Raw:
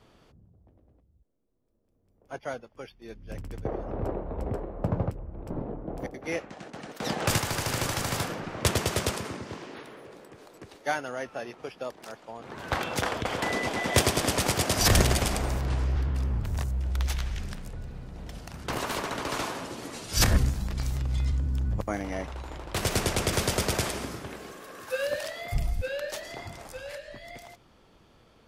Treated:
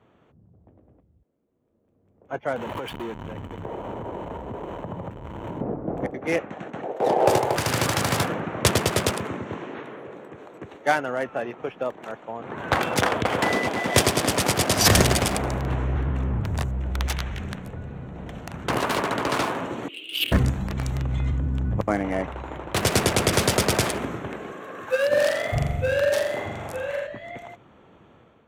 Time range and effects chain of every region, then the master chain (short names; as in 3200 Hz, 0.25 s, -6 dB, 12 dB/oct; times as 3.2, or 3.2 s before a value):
2.56–5.61 zero-crossing step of -33 dBFS + compressor 10:1, threshold -37 dBFS + small resonant body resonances 950/3000 Hz, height 10 dB, ringing for 25 ms
6.82–7.56 band shelf 560 Hz +15 dB + resonator 130 Hz, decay 0.69 s
19.88–20.32 HPF 870 Hz + compressor 3:1, threshold -26 dBFS + EQ curve 120 Hz 0 dB, 210 Hz -6 dB, 310 Hz +10 dB, 870 Hz -30 dB, 1800 Hz -21 dB, 2900 Hz +14 dB, 5800 Hz -27 dB, 15000 Hz +3 dB
25.09–27.07 notch 690 Hz, Q 23 + flutter echo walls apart 7.3 m, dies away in 0.94 s
whole clip: Wiener smoothing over 9 samples; HPF 92 Hz 12 dB/oct; AGC gain up to 8 dB